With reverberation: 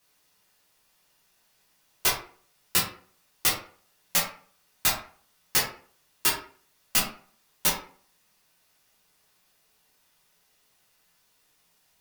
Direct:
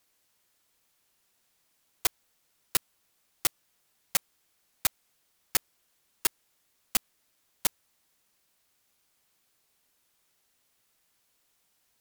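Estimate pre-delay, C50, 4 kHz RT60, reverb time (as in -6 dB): 11 ms, 5.5 dB, 0.30 s, 0.45 s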